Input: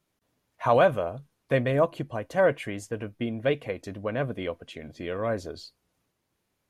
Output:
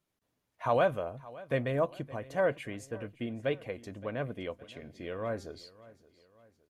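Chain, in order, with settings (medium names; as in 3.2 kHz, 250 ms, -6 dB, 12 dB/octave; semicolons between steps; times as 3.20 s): 4.54–5.58 s: de-hum 200.1 Hz, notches 34; feedback delay 567 ms, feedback 46%, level -20 dB; trim -6.5 dB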